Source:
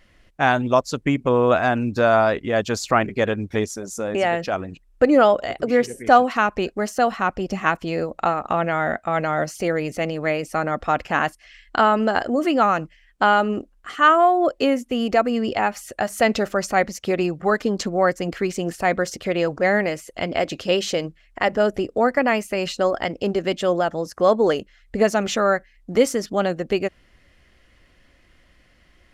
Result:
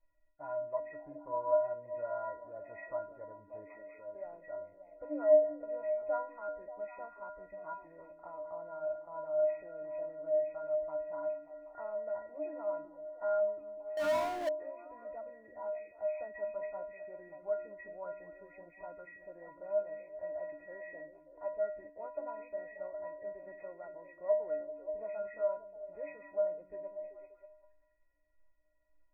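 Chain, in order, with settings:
hearing-aid frequency compression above 1,400 Hz 4 to 1
phaser with its sweep stopped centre 640 Hz, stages 4
stiff-string resonator 290 Hz, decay 0.56 s, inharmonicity 0.03
echo through a band-pass that steps 194 ms, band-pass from 230 Hz, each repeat 0.7 octaves, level −5 dB
0:13.97–0:14.49: power curve on the samples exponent 0.5
level +1 dB

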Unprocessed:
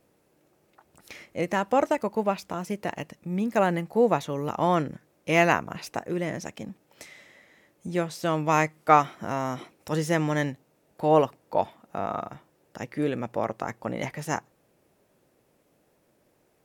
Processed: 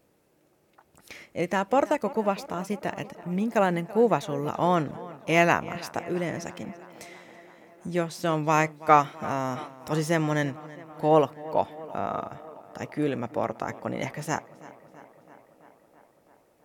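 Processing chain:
tape wow and flutter 15 cents
tape delay 331 ms, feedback 77%, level −18 dB, low-pass 3,800 Hz

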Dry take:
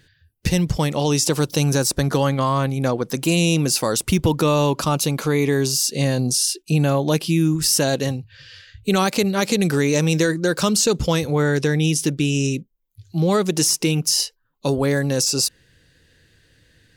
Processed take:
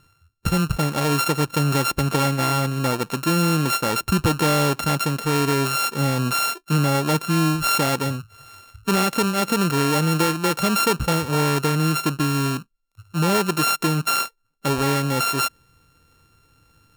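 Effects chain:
samples sorted by size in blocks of 32 samples
level −1.5 dB

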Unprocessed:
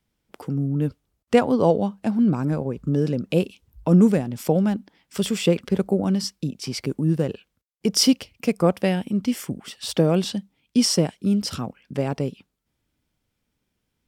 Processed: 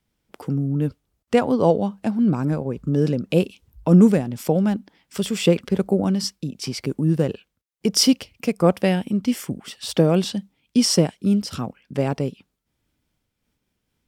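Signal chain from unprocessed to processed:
amplitude modulation by smooth noise, depth 60%
level +3.5 dB

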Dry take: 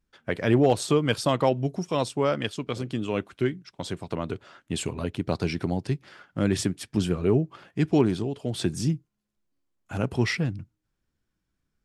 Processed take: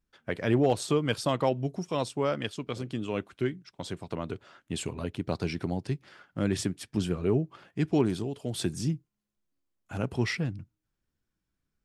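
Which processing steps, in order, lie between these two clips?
0:08.05–0:08.74: high-shelf EQ 8,200 Hz +10.5 dB
level −4 dB

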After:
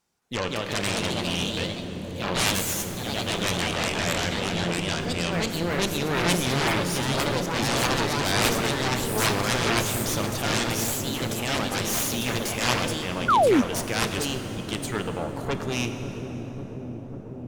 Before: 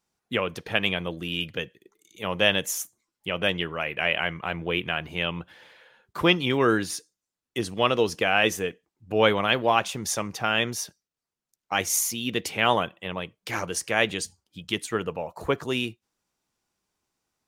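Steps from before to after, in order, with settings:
in parallel at +1 dB: downward compressor, threshold −34 dBFS, peak gain reduction 18.5 dB
on the sum: transient designer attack −5 dB, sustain +1 dB
delay with pitch and tempo change per echo 218 ms, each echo +2 semitones, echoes 3
harmonic generator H 7 −8 dB, 8 −10 dB, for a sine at −3.5 dBFS
on a send: delay with a low-pass on its return 545 ms, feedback 81%, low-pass 400 Hz, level −5 dB
on the sum: dense smooth reverb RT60 4 s, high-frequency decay 0.65×, DRR 7 dB
sound drawn into the spectrogram fall, 0:13.28–0:13.62, 220–1,500 Hz −10 dBFS
level −8 dB

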